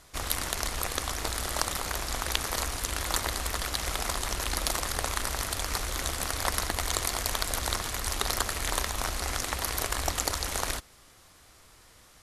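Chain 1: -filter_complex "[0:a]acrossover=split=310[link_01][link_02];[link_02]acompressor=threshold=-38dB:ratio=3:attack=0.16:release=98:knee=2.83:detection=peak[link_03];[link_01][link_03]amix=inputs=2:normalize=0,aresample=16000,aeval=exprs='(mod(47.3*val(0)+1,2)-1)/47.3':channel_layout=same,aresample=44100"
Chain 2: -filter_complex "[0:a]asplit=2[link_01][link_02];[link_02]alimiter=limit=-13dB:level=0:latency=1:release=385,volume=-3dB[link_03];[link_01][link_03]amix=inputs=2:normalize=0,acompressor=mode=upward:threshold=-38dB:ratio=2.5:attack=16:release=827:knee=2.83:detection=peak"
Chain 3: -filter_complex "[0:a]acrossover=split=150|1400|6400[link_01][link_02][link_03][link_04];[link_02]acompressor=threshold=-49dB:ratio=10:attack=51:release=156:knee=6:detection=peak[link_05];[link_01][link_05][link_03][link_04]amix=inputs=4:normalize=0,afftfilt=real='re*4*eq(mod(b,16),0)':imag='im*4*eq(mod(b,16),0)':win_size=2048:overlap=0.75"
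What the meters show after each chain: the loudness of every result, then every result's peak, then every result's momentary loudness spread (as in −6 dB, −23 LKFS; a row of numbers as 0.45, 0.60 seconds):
−38.0, −26.5, −33.5 LKFS; −27.5, −2.5, −17.0 dBFS; 5, 2, 3 LU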